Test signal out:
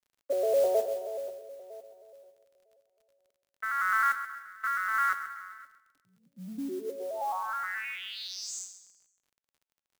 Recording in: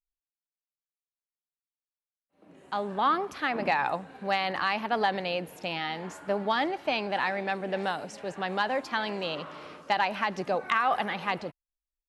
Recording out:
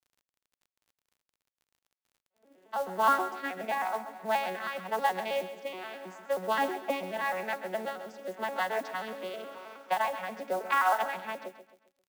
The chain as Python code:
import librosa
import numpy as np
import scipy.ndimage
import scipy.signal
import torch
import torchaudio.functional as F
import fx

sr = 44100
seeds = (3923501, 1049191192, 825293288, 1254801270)

p1 = fx.vocoder_arp(x, sr, chord='minor triad', root=54, every_ms=106)
p2 = fx.rotary(p1, sr, hz=0.9)
p3 = scipy.signal.sosfilt(scipy.signal.butter(2, 610.0, 'highpass', fs=sr, output='sos'), p2)
p4 = p3 + fx.echo_feedback(p3, sr, ms=133, feedback_pct=41, wet_db=-12.0, dry=0)
p5 = fx.mod_noise(p4, sr, seeds[0], snr_db=21)
p6 = fx.dmg_crackle(p5, sr, seeds[1], per_s=39.0, level_db=-59.0)
y = F.gain(torch.from_numpy(p6), 5.0).numpy()